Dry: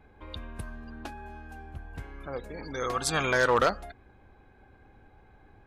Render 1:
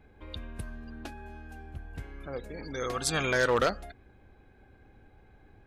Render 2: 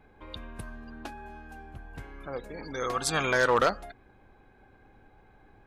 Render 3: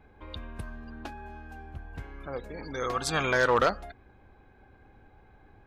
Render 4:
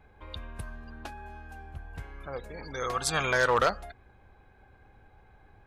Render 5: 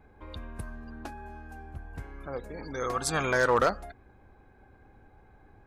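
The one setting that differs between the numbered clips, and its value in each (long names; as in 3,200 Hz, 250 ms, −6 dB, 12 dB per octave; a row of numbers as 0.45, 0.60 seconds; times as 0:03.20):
parametric band, centre frequency: 1,000, 70, 10,000, 280, 3,200 Hertz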